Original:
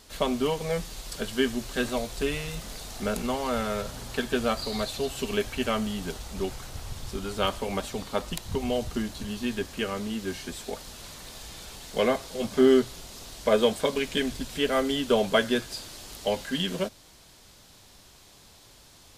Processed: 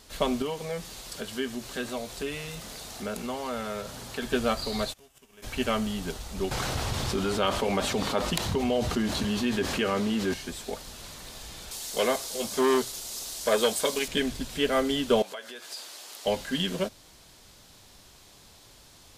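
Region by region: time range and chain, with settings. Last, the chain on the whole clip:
0.42–4.22 s: high-pass 120 Hz 6 dB/octave + compression 1.5:1, threshold -36 dBFS
4.92–5.42 s: formants flattened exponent 0.6 + peaking EQ 4.2 kHz -10.5 dB 0.26 oct + inverted gate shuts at -27 dBFS, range -27 dB
6.51–10.34 s: high-pass 130 Hz 6 dB/octave + treble shelf 6 kHz -9 dB + level flattener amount 70%
11.71–14.08 s: tone controls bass -8 dB, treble +11 dB + transformer saturation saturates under 1 kHz
15.22–16.26 s: compression 8:1, threshold -33 dBFS + high-pass 540 Hz
whole clip: none

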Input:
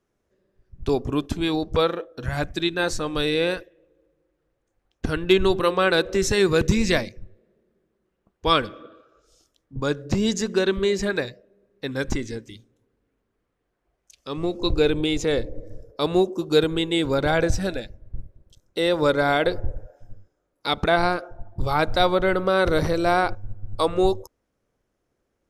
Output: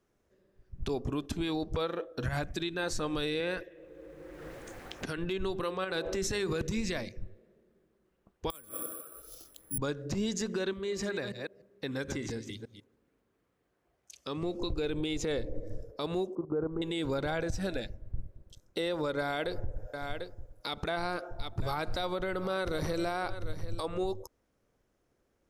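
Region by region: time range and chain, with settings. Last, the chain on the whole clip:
3.40–5.18 s: peaking EQ 1.9 kHz +4 dB 0.76 oct + three bands compressed up and down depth 100%
5.84–6.61 s: de-hum 50.45 Hz, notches 23 + compression 5:1, threshold -24 dBFS
8.50–9.78 s: inverted gate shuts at -20 dBFS, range -27 dB + careless resampling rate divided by 4×, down filtered, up zero stuff + three bands compressed up and down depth 40%
10.73–14.43 s: chunks repeated in reverse 148 ms, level -10 dB + high-pass 73 Hz + compression 2.5:1, threshold -35 dBFS
16.35–16.82 s: block-companded coder 7-bit + steep low-pass 1.3 kHz + level held to a coarse grid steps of 12 dB
19.19–23.83 s: treble shelf 4.1 kHz +6 dB + delay 744 ms -19 dB
whole clip: compression 6:1, threshold -27 dBFS; peak limiter -23.5 dBFS

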